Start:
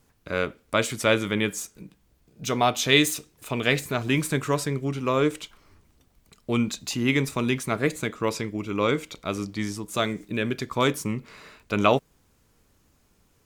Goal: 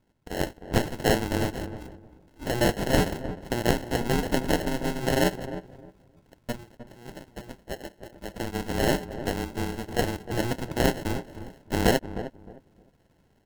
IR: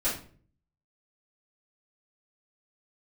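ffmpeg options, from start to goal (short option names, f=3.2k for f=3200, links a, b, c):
-filter_complex "[0:a]asplit=3[a][b][c];[a]afade=t=out:st=6.51:d=0.02[d];[b]asplit=3[e][f][g];[e]bandpass=f=730:t=q:w=8,volume=0dB[h];[f]bandpass=f=1.09k:t=q:w=8,volume=-6dB[i];[g]bandpass=f=2.44k:t=q:w=8,volume=-9dB[j];[h][i][j]amix=inputs=3:normalize=0,afade=t=in:st=6.51:d=0.02,afade=t=out:st=8.35:d=0.02[k];[c]afade=t=in:st=8.35:d=0.02[l];[d][k][l]amix=inputs=3:normalize=0,aeval=exprs='val(0)*sin(2*PI*120*n/s)':c=same,acrusher=samples=37:mix=1:aa=0.000001,asplit=2[m][n];[n]adelay=308,lowpass=f=990:p=1,volume=-11dB,asplit=2[o][p];[p]adelay=308,lowpass=f=990:p=1,volume=0.23,asplit=2[q][r];[r]adelay=308,lowpass=f=990:p=1,volume=0.23[s];[o][q][s]amix=inputs=3:normalize=0[t];[m][t]amix=inputs=2:normalize=0,dynaudnorm=f=150:g=5:m=6.5dB,volume=-4dB"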